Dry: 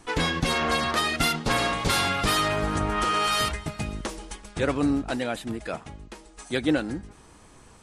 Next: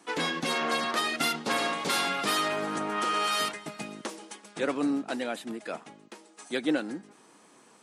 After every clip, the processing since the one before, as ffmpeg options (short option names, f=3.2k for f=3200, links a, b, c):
-af "highpass=f=200:w=0.5412,highpass=f=200:w=1.3066,volume=-3.5dB"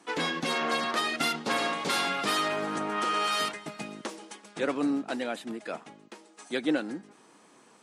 -af "highshelf=f=11k:g=-8"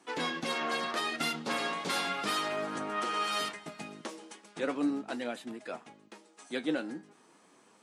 -af "flanger=delay=7.8:depth=4.8:regen=62:speed=0.36:shape=sinusoidal"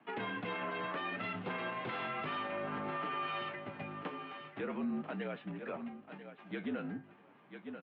-af "highpass=f=160:t=q:w=0.5412,highpass=f=160:t=q:w=1.307,lowpass=f=3k:t=q:w=0.5176,lowpass=f=3k:t=q:w=0.7071,lowpass=f=3k:t=q:w=1.932,afreqshift=-53,aecho=1:1:990|1980:0.211|0.0338,alimiter=level_in=5dB:limit=-24dB:level=0:latency=1:release=67,volume=-5dB,volume=-1dB"